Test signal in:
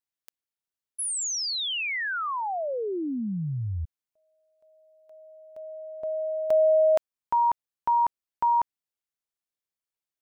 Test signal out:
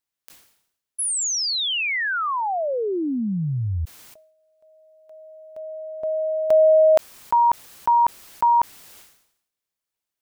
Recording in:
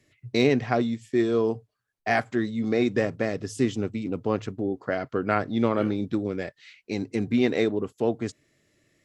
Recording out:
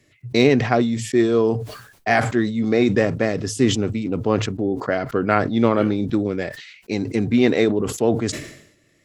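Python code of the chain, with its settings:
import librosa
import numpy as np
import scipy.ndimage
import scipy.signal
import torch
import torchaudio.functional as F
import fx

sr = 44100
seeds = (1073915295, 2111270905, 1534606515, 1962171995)

y = fx.sustainer(x, sr, db_per_s=78.0)
y = y * librosa.db_to_amplitude(5.5)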